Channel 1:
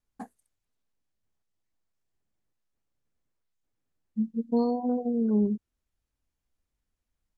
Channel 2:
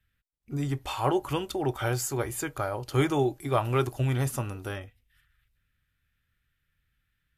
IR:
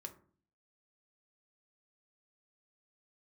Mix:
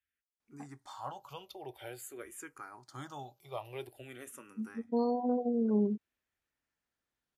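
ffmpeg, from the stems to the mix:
-filter_complex "[0:a]highshelf=f=6.7k:g=-11,adelay=400,volume=1dB[a];[1:a]asplit=2[b][c];[c]afreqshift=-0.49[d];[b][d]amix=inputs=2:normalize=1,volume=-11.5dB,asplit=2[e][f];[f]apad=whole_len=343021[g];[a][g]sidechaincompress=threshold=-48dB:ratio=8:attack=10:release=1050[h];[h][e]amix=inputs=2:normalize=0,highpass=f=370:p=1"

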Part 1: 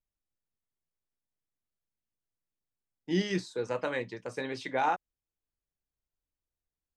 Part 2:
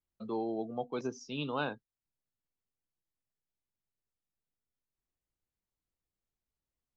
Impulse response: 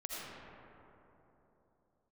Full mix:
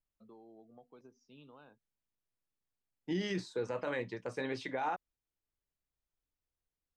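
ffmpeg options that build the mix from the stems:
-filter_complex "[0:a]highshelf=f=4.7k:g=-7,alimiter=level_in=2dB:limit=-24dB:level=0:latency=1:release=32,volume=-2dB,volume=-0.5dB[a];[1:a]highshelf=f=4.4k:g=-9.5,acompressor=threshold=-36dB:ratio=10,volume=-17dB[b];[a][b]amix=inputs=2:normalize=0"

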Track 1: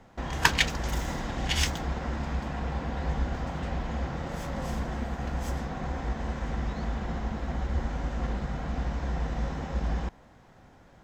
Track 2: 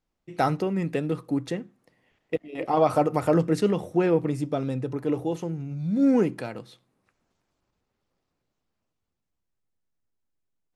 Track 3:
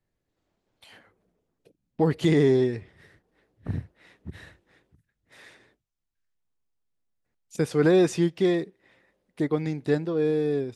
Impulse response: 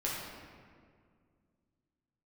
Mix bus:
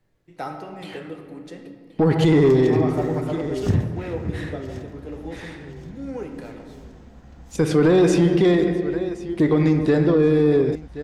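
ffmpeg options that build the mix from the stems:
-filter_complex "[0:a]acrossover=split=290|3000[a][b][c];[b]acompressor=threshold=-42dB:ratio=6[d];[a][d][c]amix=inputs=3:normalize=0,adelay=2050,volume=-20dB,asplit=2[e][f];[f]volume=-11dB[g];[1:a]acrossover=split=330[h][i];[h]acompressor=threshold=-35dB:ratio=6[j];[j][i]amix=inputs=2:normalize=0,volume=-19dB,asplit=2[k][l];[l]volume=-3.5dB[m];[2:a]highshelf=f=5.4k:g=-7,volume=1.5dB,asplit=3[n][o][p];[o]volume=-9dB[q];[p]volume=-18dB[r];[3:a]atrim=start_sample=2205[s];[m][q]amix=inputs=2:normalize=0[t];[t][s]afir=irnorm=-1:irlink=0[u];[g][r]amix=inputs=2:normalize=0,aecho=0:1:1075|2150|3225|4300|5375|6450:1|0.42|0.176|0.0741|0.0311|0.0131[v];[e][k][n][u][v]amix=inputs=5:normalize=0,acontrast=80,alimiter=limit=-9.5dB:level=0:latency=1:release=60"

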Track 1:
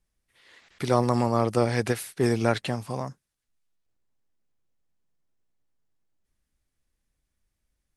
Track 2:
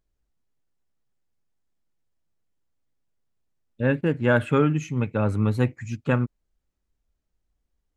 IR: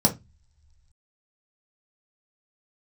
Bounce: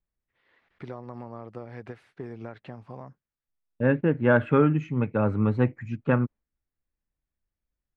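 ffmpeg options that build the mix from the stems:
-filter_complex "[0:a]acompressor=threshold=-26dB:ratio=10,volume=-8dB[a];[1:a]highpass=110,agate=range=-33dB:threshold=-39dB:ratio=3:detection=peak,volume=0.5dB[b];[a][b]amix=inputs=2:normalize=0,lowpass=2k"

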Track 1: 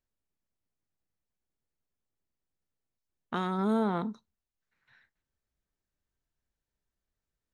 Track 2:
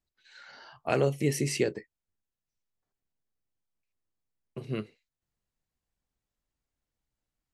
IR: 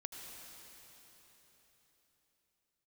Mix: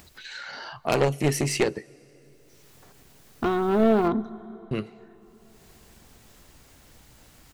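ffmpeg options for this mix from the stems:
-filter_complex "[0:a]aemphasis=mode=reproduction:type=riaa,aecho=1:1:2.8:0.78,adelay=100,volume=1.5dB,asplit=2[a][b];[b]volume=-11.5dB[c];[1:a]highpass=53,acompressor=mode=upward:threshold=-34dB:ratio=2.5,volume=2.5dB,asplit=3[d][e][f];[d]atrim=end=4.08,asetpts=PTS-STARTPTS,afade=t=out:st=4.076:d=0.004:c=hsin[g];[e]atrim=start=4.08:end=4.71,asetpts=PTS-STARTPTS,volume=0[h];[f]atrim=start=4.71,asetpts=PTS-STARTPTS,afade=t=in:d=0.004:c=hsin[i];[g][h][i]concat=n=3:v=0:a=1,asplit=3[j][k][l];[k]volume=-20dB[m];[l]apad=whole_len=336859[n];[a][n]sidechaincompress=threshold=-45dB:ratio=8:attack=16:release=390[o];[2:a]atrim=start_sample=2205[p];[c][m]amix=inputs=2:normalize=0[q];[q][p]afir=irnorm=-1:irlink=0[r];[o][j][r]amix=inputs=3:normalize=0,aeval=exprs='0.316*(cos(1*acos(clip(val(0)/0.316,-1,1)))-cos(1*PI/2))+0.0141*(cos(5*acos(clip(val(0)/0.316,-1,1)))-cos(5*PI/2))+0.0891*(cos(6*acos(clip(val(0)/0.316,-1,1)))-cos(6*PI/2))+0.0631*(cos(8*acos(clip(val(0)/0.316,-1,1)))-cos(8*PI/2))':c=same"

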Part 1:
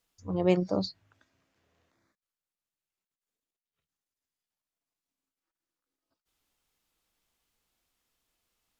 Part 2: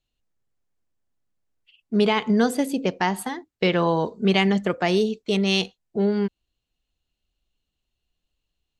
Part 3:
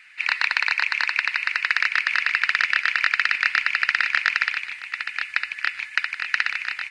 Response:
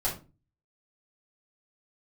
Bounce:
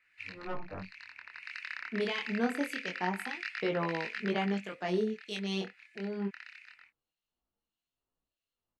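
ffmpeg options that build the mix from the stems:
-filter_complex "[0:a]lowpass=1.2k,aeval=exprs='0.282*(cos(1*acos(clip(val(0)/0.282,-1,1)))-cos(1*PI/2))+0.126*(cos(3*acos(clip(val(0)/0.282,-1,1)))-cos(3*PI/2))+0.0251*(cos(7*acos(clip(val(0)/0.282,-1,1)))-cos(7*PI/2))':c=same,asplit=2[a][b];[b]adelay=9.7,afreqshift=1.4[c];[a][c]amix=inputs=2:normalize=1,volume=0.5dB,asplit=2[d][e];[1:a]highpass=160,volume=-6dB[f];[2:a]volume=-12.5dB,afade=t=out:st=4.37:d=0.37:silence=0.421697[g];[e]apad=whole_len=304294[h];[g][h]sidechaincompress=threshold=-47dB:ratio=3:attack=12:release=690[i];[d][f][i]amix=inputs=3:normalize=0,acrossover=split=1600[j][k];[j]aeval=exprs='val(0)*(1-0.7/2+0.7/2*cos(2*PI*1.6*n/s))':c=same[l];[k]aeval=exprs='val(0)*(1-0.7/2-0.7/2*cos(2*PI*1.6*n/s))':c=same[m];[l][m]amix=inputs=2:normalize=0,flanger=delay=18.5:depth=7.5:speed=0.25"

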